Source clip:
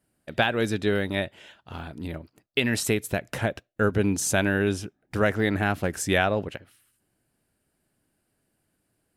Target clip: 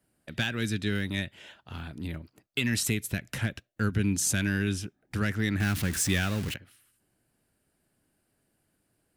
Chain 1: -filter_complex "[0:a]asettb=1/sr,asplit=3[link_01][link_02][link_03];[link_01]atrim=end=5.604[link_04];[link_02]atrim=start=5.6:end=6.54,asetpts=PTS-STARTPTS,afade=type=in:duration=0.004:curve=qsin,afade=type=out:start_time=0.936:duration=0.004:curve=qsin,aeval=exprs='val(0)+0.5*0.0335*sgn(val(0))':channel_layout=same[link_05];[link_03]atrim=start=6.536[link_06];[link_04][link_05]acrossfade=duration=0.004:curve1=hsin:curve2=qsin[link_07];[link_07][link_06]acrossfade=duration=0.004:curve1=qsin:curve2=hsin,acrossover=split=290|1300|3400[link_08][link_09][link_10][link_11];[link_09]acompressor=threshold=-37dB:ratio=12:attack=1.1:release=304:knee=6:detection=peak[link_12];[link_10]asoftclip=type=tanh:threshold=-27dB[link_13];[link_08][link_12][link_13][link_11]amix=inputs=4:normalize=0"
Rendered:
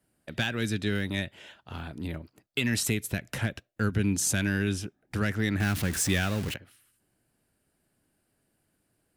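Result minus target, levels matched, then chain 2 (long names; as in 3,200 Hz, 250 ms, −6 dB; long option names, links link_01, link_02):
downward compressor: peak gain reduction −7 dB
-filter_complex "[0:a]asettb=1/sr,asplit=3[link_01][link_02][link_03];[link_01]atrim=end=5.604[link_04];[link_02]atrim=start=5.6:end=6.54,asetpts=PTS-STARTPTS,afade=type=in:duration=0.004:curve=qsin,afade=type=out:start_time=0.936:duration=0.004:curve=qsin,aeval=exprs='val(0)+0.5*0.0335*sgn(val(0))':channel_layout=same[link_05];[link_03]atrim=start=6.536[link_06];[link_04][link_05]acrossfade=duration=0.004:curve1=hsin:curve2=qsin[link_07];[link_07][link_06]acrossfade=duration=0.004:curve1=qsin:curve2=hsin,acrossover=split=290|1300|3400[link_08][link_09][link_10][link_11];[link_09]acompressor=threshold=-44.5dB:ratio=12:attack=1.1:release=304:knee=6:detection=peak[link_12];[link_10]asoftclip=type=tanh:threshold=-27dB[link_13];[link_08][link_12][link_13][link_11]amix=inputs=4:normalize=0"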